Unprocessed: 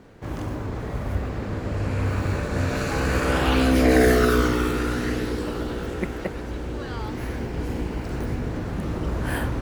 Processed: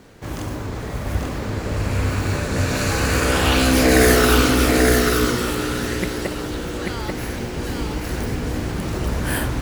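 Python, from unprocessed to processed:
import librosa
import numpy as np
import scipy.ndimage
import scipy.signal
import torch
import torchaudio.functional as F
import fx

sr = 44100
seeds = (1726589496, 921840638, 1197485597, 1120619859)

p1 = fx.high_shelf(x, sr, hz=3000.0, db=11.0)
p2 = p1 + fx.echo_single(p1, sr, ms=838, db=-3.0, dry=0)
y = F.gain(torch.from_numpy(p2), 1.5).numpy()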